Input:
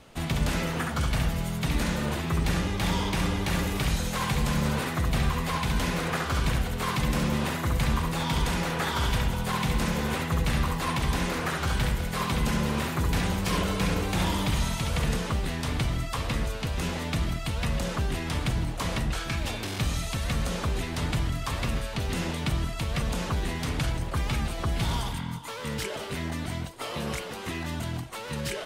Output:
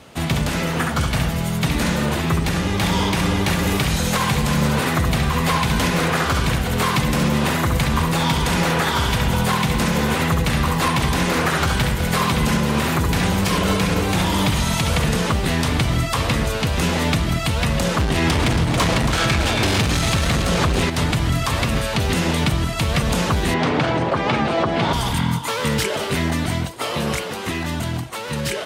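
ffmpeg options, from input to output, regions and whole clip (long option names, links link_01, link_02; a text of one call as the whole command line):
ffmpeg -i in.wav -filter_complex "[0:a]asettb=1/sr,asplit=3[link_01][link_02][link_03];[link_01]atrim=end=18.004[link_04];[link_02]atrim=start=18:end=20.9,asetpts=PTS-STARTPTS,afade=type=in:duration=0.004:curve=qsin,afade=type=out:start_time=2.896:duration=0.004:curve=qsin,highshelf=frequency=12000:gain=-10.5,aeval=exprs='0.112*sin(PI/2*1.78*val(0)/0.112)':channel_layout=same,aecho=1:1:277:0.447,atrim=end_sample=127890[link_05];[link_03]atrim=start=20.896[link_06];[link_04][link_05]acrossfade=duration=0.004:curve1=hsin:curve2=qsin[link_07];[link_07][link_06]acrossfade=duration=0.004:curve1=qsin:curve2=hsin,asettb=1/sr,asplit=3[link_08][link_09][link_10];[link_08]atrim=end=23.544[link_11];[link_09]atrim=start=23.54:end=24.93,asetpts=PTS-STARTPTS,afade=type=in:duration=0.004:curve=qsin,afade=type=out:start_time=1.386:duration=0.004:curve=qsin,highpass=140,lowpass=4200,equalizer=frequency=590:width=0.42:gain=8.5[link_12];[link_10]atrim=start=24.926[link_13];[link_11][link_12]acrossfade=duration=0.004:curve1=hsin:curve2=qsin[link_14];[link_14][link_13]acrossfade=duration=0.004:curve1=qsin:curve2=hsin,highpass=68,dynaudnorm=framelen=200:gausssize=31:maxgain=7.5dB,alimiter=limit=-18dB:level=0:latency=1:release=332,volume=8.5dB" out.wav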